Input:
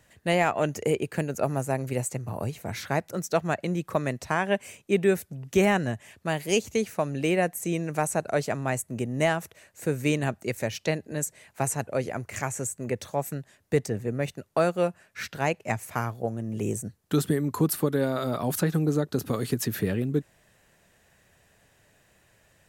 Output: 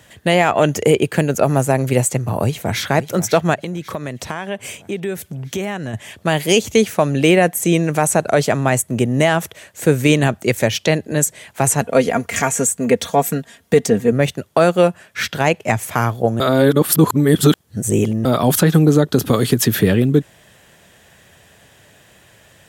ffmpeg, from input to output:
ffmpeg -i in.wav -filter_complex "[0:a]asplit=2[link_01][link_02];[link_02]afade=type=in:start_time=2.39:duration=0.01,afade=type=out:start_time=2.84:duration=0.01,aecho=0:1:540|1080|1620|2160|2700|3240|3780:0.223872|0.134323|0.080594|0.0483564|0.0290138|0.0174083|0.010445[link_03];[link_01][link_03]amix=inputs=2:normalize=0,asplit=3[link_04][link_05][link_06];[link_04]afade=type=out:start_time=3.54:duration=0.02[link_07];[link_05]acompressor=threshold=-38dB:ratio=3:attack=3.2:release=140:knee=1:detection=peak,afade=type=in:start_time=3.54:duration=0.02,afade=type=out:start_time=5.93:duration=0.02[link_08];[link_06]afade=type=in:start_time=5.93:duration=0.02[link_09];[link_07][link_08][link_09]amix=inputs=3:normalize=0,asettb=1/sr,asplit=3[link_10][link_11][link_12];[link_10]atrim=end=11.814[link_13];[link_11]atrim=start=11.81:end=14.12,asetpts=PTS-STARTPTS,afade=type=in:duration=0.004:curve=qsin,afade=type=out:start_time=2.306:duration=0.004:curve=qsin,aecho=1:1:4.3:0.65,atrim=end_sample=101871[link_14];[link_12]atrim=start=14.116[link_15];[link_13][link_14]acrossfade=duration=0.004:curve1=hsin:curve2=qsin[link_16];[link_16][link_15]acrossfade=duration=0.004:curve1=qsin:curve2=hsin,asplit=3[link_17][link_18][link_19];[link_17]atrim=end=16.402[link_20];[link_18]atrim=start=16.398:end=18.252,asetpts=PTS-STARTPTS,areverse[link_21];[link_19]atrim=start=18.248[link_22];[link_20][link_21]acrossfade=duration=0.004:curve1=hsin:curve2=hsin[link_23];[link_23][link_22]acrossfade=duration=0.004:curve1=hsin:curve2=hsin,highpass=61,equalizer=frequency=3300:width_type=o:width=0.2:gain=8,alimiter=level_in=14dB:limit=-1dB:release=50:level=0:latency=1,volume=-1dB" out.wav

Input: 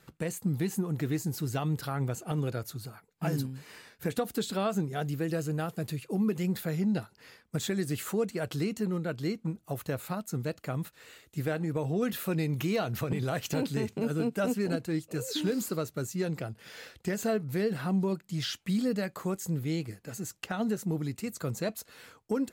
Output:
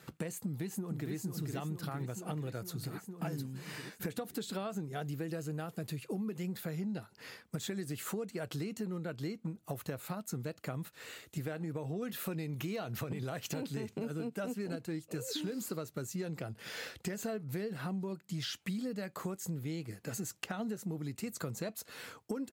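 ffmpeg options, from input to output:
ffmpeg -i in.wav -filter_complex "[0:a]asplit=2[link_01][link_02];[link_02]afade=type=in:start_time=0.4:duration=0.01,afade=type=out:start_time=1.13:duration=0.01,aecho=0:1:460|920|1380|1840|2300|2760|3220|3680|4140|4600:0.595662|0.38718|0.251667|0.163584|0.106329|0.0691141|0.0449242|0.0292007|0.0189805|0.0123373[link_03];[link_01][link_03]amix=inputs=2:normalize=0,highpass=82,acompressor=threshold=-40dB:ratio=6,volume=4dB" out.wav

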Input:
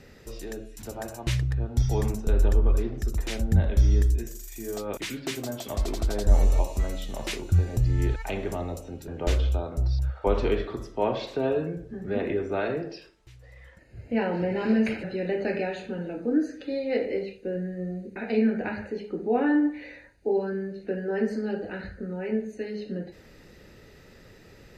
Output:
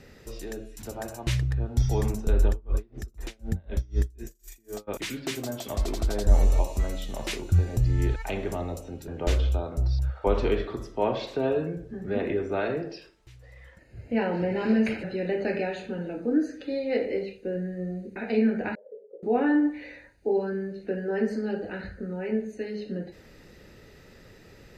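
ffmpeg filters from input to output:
ffmpeg -i in.wav -filter_complex "[0:a]asplit=3[link_01][link_02][link_03];[link_01]afade=type=out:start_time=2.47:duration=0.02[link_04];[link_02]aeval=exprs='val(0)*pow(10,-31*(0.5-0.5*cos(2*PI*4*n/s))/20)':channel_layout=same,afade=type=in:start_time=2.47:duration=0.02,afade=type=out:start_time=4.87:duration=0.02[link_05];[link_03]afade=type=in:start_time=4.87:duration=0.02[link_06];[link_04][link_05][link_06]amix=inputs=3:normalize=0,asettb=1/sr,asplit=3[link_07][link_08][link_09];[link_07]atrim=end=18.754[link_10];[link_08]atrim=start=18.75:end=19.23,asetpts=PTS-STARTPTS,afade=type=in:duration=0.004:curve=qsin,afade=type=out:start_time=0.476:duration=0.004:curve=qsin,asuperpass=centerf=520:order=4:qfactor=4.7[link_11];[link_09]atrim=start=19.226[link_12];[link_10][link_11]acrossfade=duration=0.004:curve1=hsin:curve2=qsin[link_13];[link_13][link_12]acrossfade=duration=0.004:curve1=qsin:curve2=hsin" out.wav

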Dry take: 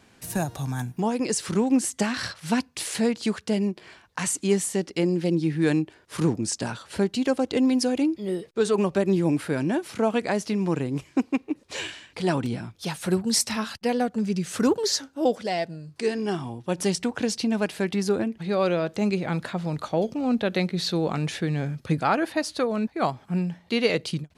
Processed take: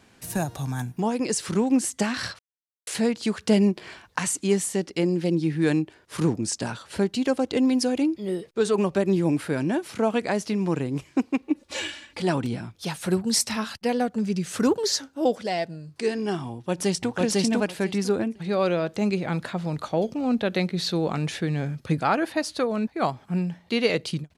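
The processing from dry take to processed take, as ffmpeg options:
ffmpeg -i in.wav -filter_complex "[0:a]asettb=1/sr,asplit=3[link_01][link_02][link_03];[link_01]atrim=end=3.394[link_04];[link_02]atrim=start=3.39:end=4.19,asetpts=PTS-STARTPTS,afade=type=in:duration=0.004:curve=qsin,afade=type=out:start_time=0.796:duration=0.004:curve=qsin,acontrast=39[link_05];[link_03]atrim=start=4.186[link_06];[link_04][link_05]acrossfade=duration=0.004:curve1=hsin:curve2=qsin[link_07];[link_07][link_06]acrossfade=duration=0.004:curve1=qsin:curve2=hsin,asettb=1/sr,asplit=3[link_08][link_09][link_10];[link_08]atrim=end=11.424[link_11];[link_09]atrim=start=11.42:end=12.22,asetpts=PTS-STARTPTS,afade=type=in:duration=0.004:curve=qsin,afade=type=out:start_time=0.796:duration=0.004:curve=qsin,aecho=1:1:3.5:0.73,atrim=end_sample=35280[link_12];[link_10]atrim=start=12.216[link_13];[link_11][link_12]acrossfade=duration=0.004:curve1=hsin:curve2=qsin[link_14];[link_14][link_13]acrossfade=duration=0.004:curve1=qsin:curve2=hsin,asplit=2[link_15][link_16];[link_16]afade=type=in:start_time=16.52:duration=0.01,afade=type=out:start_time=17.15:duration=0.01,aecho=0:1:500|1000|1500:1|0.15|0.0225[link_17];[link_15][link_17]amix=inputs=2:normalize=0,asplit=3[link_18][link_19][link_20];[link_18]atrim=end=2.39,asetpts=PTS-STARTPTS,afade=type=out:start_time=2.386:duration=0.004:curve=hsin[link_21];[link_19]atrim=start=2.39:end=2.87,asetpts=PTS-STARTPTS,volume=0[link_22];[link_20]atrim=start=2.87,asetpts=PTS-STARTPTS,afade=type=in:duration=0.004:curve=hsin[link_23];[link_21][link_22][link_23]concat=n=3:v=0:a=1" out.wav

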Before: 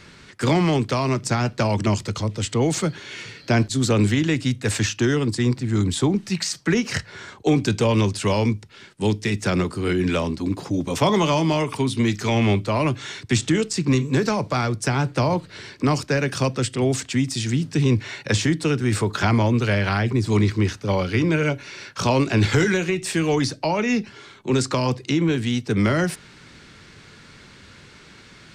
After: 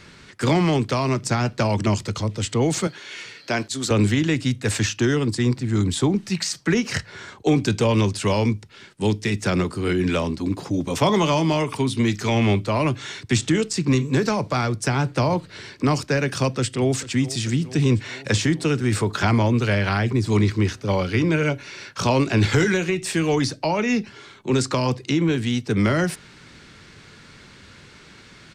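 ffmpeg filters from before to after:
ffmpeg -i in.wav -filter_complex "[0:a]asettb=1/sr,asplit=3[link_01][link_02][link_03];[link_01]atrim=end=2.874[link_04];[link_02]atrim=start=2.87:end=3.91,asetpts=PTS-STARTPTS,afade=type=in:duration=0.004:curve=qsin,afade=type=out:start_time=1.036:duration=0.004:curve=qsin,highpass=frequency=520:poles=1[link_05];[link_03]atrim=start=3.906[link_06];[link_04][link_05]acrossfade=duration=0.004:curve1=hsin:curve2=qsin[link_07];[link_07][link_06]acrossfade=duration=0.004:curve1=qsin:curve2=hsin,asplit=2[link_08][link_09];[link_09]afade=type=in:start_time=16.51:duration=0.01,afade=type=out:start_time=17.05:duration=0.01,aecho=0:1:440|880|1320|1760|2200|2640|3080|3520|3960|4400:0.149624|0.112218|0.0841633|0.0631224|0.0473418|0.0355064|0.0266298|0.0199723|0.0149793|0.0112344[link_10];[link_08][link_10]amix=inputs=2:normalize=0" out.wav

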